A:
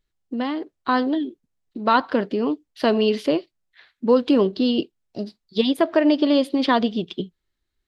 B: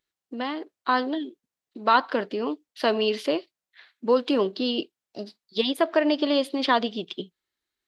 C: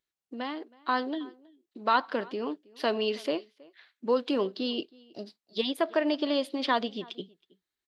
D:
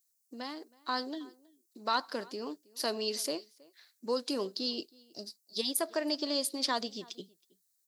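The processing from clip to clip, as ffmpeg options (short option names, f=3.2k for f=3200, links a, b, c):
-af "highpass=f=560:p=1"
-filter_complex "[0:a]asplit=2[a][b];[b]adelay=320.7,volume=-24dB,highshelf=f=4k:g=-7.22[c];[a][c]amix=inputs=2:normalize=0,volume=-5dB"
-af "aexciter=amount=12:drive=5.3:freq=4.7k,volume=-6.5dB"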